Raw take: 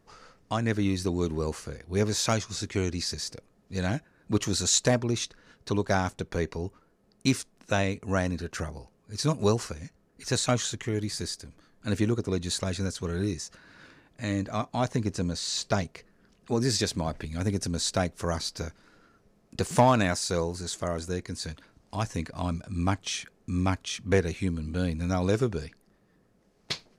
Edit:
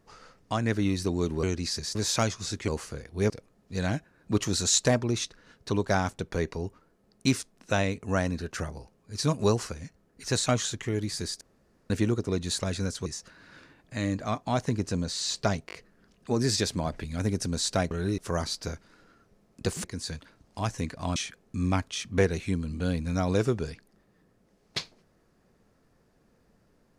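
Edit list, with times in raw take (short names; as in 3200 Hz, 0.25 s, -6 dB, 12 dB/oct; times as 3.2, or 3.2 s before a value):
1.43–2.05 swap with 2.78–3.3
11.41–11.9 room tone
13.06–13.33 move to 18.12
15.94 stutter 0.02 s, 4 plays
19.78–21.2 cut
22.52–23.1 cut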